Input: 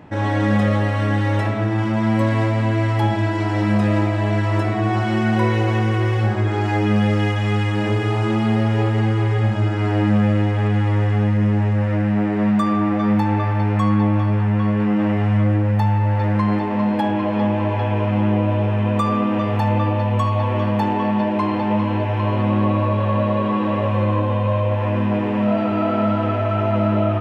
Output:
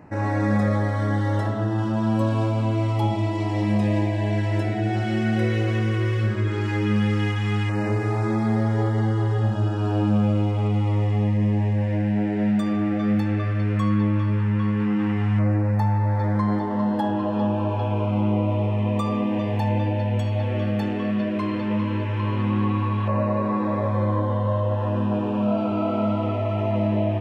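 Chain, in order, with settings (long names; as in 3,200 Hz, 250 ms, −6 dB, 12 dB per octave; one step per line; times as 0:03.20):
auto-filter notch saw down 0.13 Hz 570–3,400 Hz
level −3.5 dB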